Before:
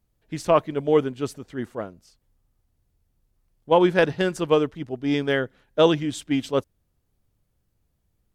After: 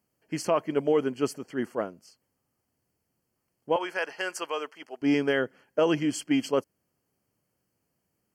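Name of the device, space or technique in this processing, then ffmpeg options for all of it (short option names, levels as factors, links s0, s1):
PA system with an anti-feedback notch: -filter_complex "[0:a]highpass=200,asuperstop=centerf=3700:order=20:qfactor=4,alimiter=limit=0.168:level=0:latency=1:release=125,asettb=1/sr,asplit=3[s0][s1][s2];[s0]atrim=end=3.764[s3];[s1]atrim=start=3.76:end=5.02,asetpts=PTS-STARTPTS,afade=t=in:d=0.004:c=qsin,afade=t=out:st=1.256:d=0.004:c=qsin,highpass=800[s4];[s2]atrim=start=5.016[s5];[s3][s4]acrossfade=d=0.004:c1=hsin:c2=qsin[s6];[s6][s5]acrossfade=d=0.004:c1=qsin:c2=hsin,volume=1.19"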